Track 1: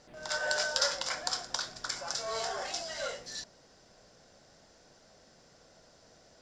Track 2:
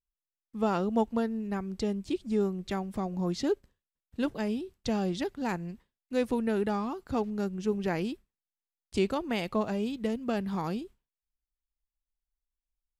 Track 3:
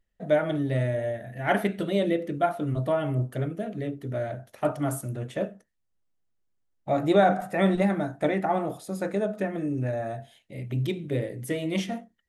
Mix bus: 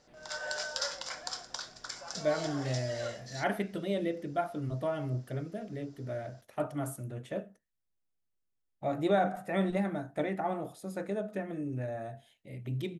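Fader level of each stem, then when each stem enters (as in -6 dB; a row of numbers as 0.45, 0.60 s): -5.5 dB, off, -7.5 dB; 0.00 s, off, 1.95 s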